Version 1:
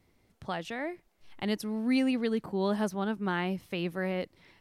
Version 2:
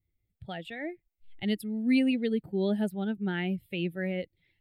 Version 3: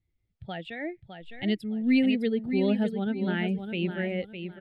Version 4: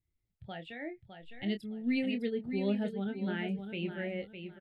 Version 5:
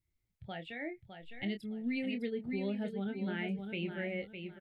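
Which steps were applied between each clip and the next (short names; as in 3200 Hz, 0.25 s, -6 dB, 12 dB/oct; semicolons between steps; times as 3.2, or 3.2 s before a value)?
per-bin expansion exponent 1.5; fixed phaser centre 2600 Hz, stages 4; gain +4 dB
LPF 5100 Hz 12 dB/oct; feedback echo 0.608 s, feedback 26%, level -8 dB; gain +2 dB
doubler 25 ms -8.5 dB; gain -7 dB
bell 2200 Hz +5.5 dB 0.22 oct; compressor, threshold -32 dBFS, peak gain reduction 6.5 dB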